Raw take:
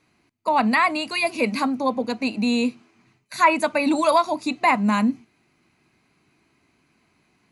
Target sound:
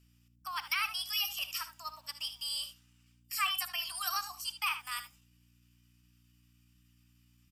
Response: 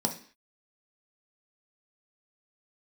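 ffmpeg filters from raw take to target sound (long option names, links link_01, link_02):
-filter_complex "[0:a]highpass=frequency=760:width=0.5412,highpass=frequency=760:width=1.3066,aderivative,aeval=exprs='val(0)+0.000631*(sin(2*PI*50*n/s)+sin(2*PI*2*50*n/s)/2+sin(2*PI*3*50*n/s)/3+sin(2*PI*4*50*n/s)/4+sin(2*PI*5*50*n/s)/5)':channel_layout=same,asetrate=52444,aresample=44100,atempo=0.840896,asplit=2[link_01][link_02];[link_02]aecho=0:1:60|76:0.158|0.224[link_03];[link_01][link_03]amix=inputs=2:normalize=0"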